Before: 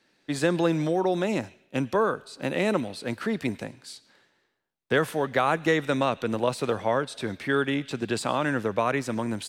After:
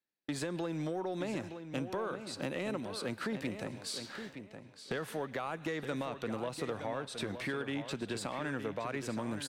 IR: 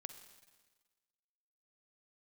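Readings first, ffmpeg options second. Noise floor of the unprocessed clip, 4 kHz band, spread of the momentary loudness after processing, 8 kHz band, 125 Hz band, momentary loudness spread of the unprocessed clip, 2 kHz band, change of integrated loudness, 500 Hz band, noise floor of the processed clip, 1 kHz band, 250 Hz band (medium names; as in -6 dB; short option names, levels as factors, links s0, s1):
-71 dBFS, -7.0 dB, 4 LU, -6.0 dB, -10.0 dB, 9 LU, -11.5 dB, -11.5 dB, -12.0 dB, -55 dBFS, -13.0 dB, -10.0 dB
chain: -filter_complex "[0:a]alimiter=limit=0.178:level=0:latency=1:release=217,areverse,acompressor=mode=upward:threshold=0.0126:ratio=2.5,areverse,agate=range=0.0224:threshold=0.00501:ratio=3:detection=peak,acompressor=threshold=0.0126:ratio=4,asoftclip=type=tanh:threshold=0.0355,asplit=2[s0][s1];[s1]adelay=918,lowpass=f=4900:p=1,volume=0.355,asplit=2[s2][s3];[s3]adelay=918,lowpass=f=4900:p=1,volume=0.21,asplit=2[s4][s5];[s5]adelay=918,lowpass=f=4900:p=1,volume=0.21[s6];[s2][s4][s6]amix=inputs=3:normalize=0[s7];[s0][s7]amix=inputs=2:normalize=0,volume=1.41"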